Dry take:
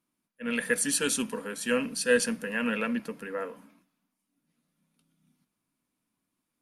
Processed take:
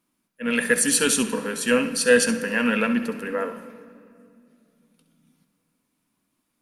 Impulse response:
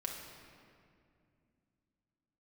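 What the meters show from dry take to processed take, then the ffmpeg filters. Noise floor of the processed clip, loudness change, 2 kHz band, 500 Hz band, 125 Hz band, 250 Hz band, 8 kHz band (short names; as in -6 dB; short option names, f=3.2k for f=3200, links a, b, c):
-75 dBFS, +7.0 dB, +7.0 dB, +7.0 dB, +7.5 dB, +7.5 dB, +7.5 dB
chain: -filter_complex "[0:a]bandreject=f=50:t=h:w=6,bandreject=f=100:t=h:w=6,bandreject=f=150:t=h:w=6,acontrast=84,asplit=2[a][b];[1:a]atrim=start_sample=2205,adelay=66[c];[b][c]afir=irnorm=-1:irlink=0,volume=-10.5dB[d];[a][d]amix=inputs=2:normalize=0"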